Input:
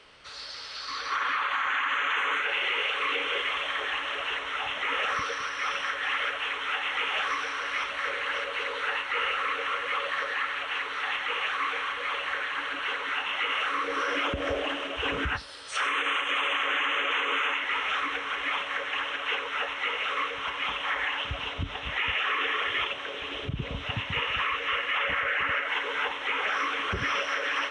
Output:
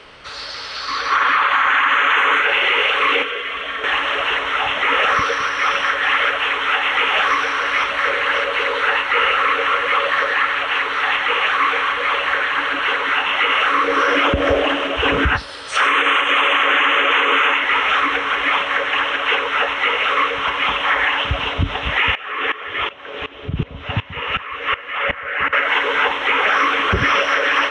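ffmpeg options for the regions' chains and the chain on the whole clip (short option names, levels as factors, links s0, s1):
-filter_complex "[0:a]asettb=1/sr,asplit=3[s0][s1][s2];[s0]atrim=end=3.224[s3];[s1]atrim=start=3.22:end=3.84,asetpts=PTS-STARTPTS,afade=t=in:d=0.004:c=qsin,afade=t=out:st=0.616:d=0.004:c=qsin,equalizer=f=880:t=o:w=0.33:g=-9,aecho=1:1:4.4:0.4,atrim=end_sample=27342,acrossover=split=380|4200[s4][s5][s6];[s4]acompressor=threshold=0.00178:ratio=4[s7];[s5]acompressor=threshold=0.0158:ratio=4[s8];[s6]acompressor=threshold=0.00141:ratio=4[s9];[s7][s8][s9]amix=inputs=3:normalize=0[s10];[s2]atrim=start=3.836[s11];[s3][s10]acrossfade=d=0.004:c1=hsin:c2=qsin[s12];[s12][s11]acrossfade=d=0.004:c1=qsin:c2=hsin,asettb=1/sr,asplit=3[s13][s14][s15];[s13]atrim=end=22.154[s16];[s14]atrim=start=22.15:end=25.53,asetpts=PTS-STARTPTS,afade=t=in:d=0.004:c=qsin,afade=t=out:st=3.376:d=0.004:c=qsin,aemphasis=mode=reproduction:type=cd,asplit=2[s17][s18];[s18]adelay=12,volume=0.266[s19];[s17][s19]amix=inputs=2:normalize=0,atrim=end_sample=149058,aeval=exprs='val(0)*pow(10,-19*if(lt(mod(-2.7*n/s,1),2*abs(-2.7)/1000),1-mod(-2.7*n/s,1)/(2*abs(-2.7)/1000),(mod(-2.7*n/s,1)-2*abs(-2.7)/1000)/(1-2*abs(-2.7)/1000))/20)':c=same[s20];[s15]atrim=start=25.526[s21];[s16][s20]acrossfade=d=0.004:c1=hsin:c2=qsin[s22];[s22][s21]acrossfade=d=0.004:c1=qsin:c2=hsin,highshelf=f=3700:g=-8,acontrast=45,volume=2.51"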